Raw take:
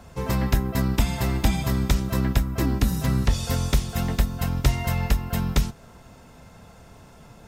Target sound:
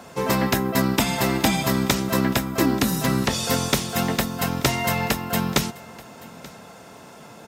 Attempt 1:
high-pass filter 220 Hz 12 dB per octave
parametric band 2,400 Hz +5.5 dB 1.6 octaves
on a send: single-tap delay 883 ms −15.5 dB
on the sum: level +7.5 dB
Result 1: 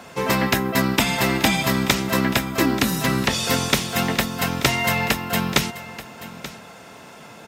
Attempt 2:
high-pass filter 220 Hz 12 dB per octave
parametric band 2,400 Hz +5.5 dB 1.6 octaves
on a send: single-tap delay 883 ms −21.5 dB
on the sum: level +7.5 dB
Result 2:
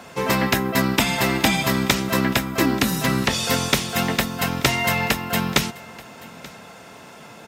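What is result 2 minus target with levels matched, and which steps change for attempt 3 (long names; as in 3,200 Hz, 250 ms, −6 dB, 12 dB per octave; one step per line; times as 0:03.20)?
2,000 Hz band +3.0 dB
remove: parametric band 2,400 Hz +5.5 dB 1.6 octaves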